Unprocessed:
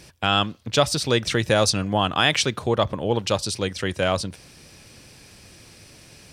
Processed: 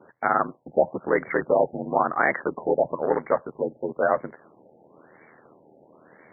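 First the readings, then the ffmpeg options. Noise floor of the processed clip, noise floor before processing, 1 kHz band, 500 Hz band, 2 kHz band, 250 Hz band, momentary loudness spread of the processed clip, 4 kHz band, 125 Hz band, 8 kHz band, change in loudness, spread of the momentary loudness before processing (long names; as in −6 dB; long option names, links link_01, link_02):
−57 dBFS, −49 dBFS, +0.5 dB, +0.5 dB, −2.0 dB, −4.5 dB, 6 LU, below −40 dB, −14.5 dB, below −40 dB, −2.5 dB, 7 LU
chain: -filter_complex "[0:a]asplit=2[link_01][link_02];[link_02]aeval=exprs='(mod(6.31*val(0)+1,2)-1)/6.31':channel_layout=same,volume=-10.5dB[link_03];[link_01][link_03]amix=inputs=2:normalize=0,aeval=exprs='val(0)*sin(2*PI*40*n/s)':channel_layout=same,highpass=350,lowpass=6100,afftfilt=real='re*lt(b*sr/1024,860*pow(2300/860,0.5+0.5*sin(2*PI*1*pts/sr)))':imag='im*lt(b*sr/1024,860*pow(2300/860,0.5+0.5*sin(2*PI*1*pts/sr)))':win_size=1024:overlap=0.75,volume=4dB"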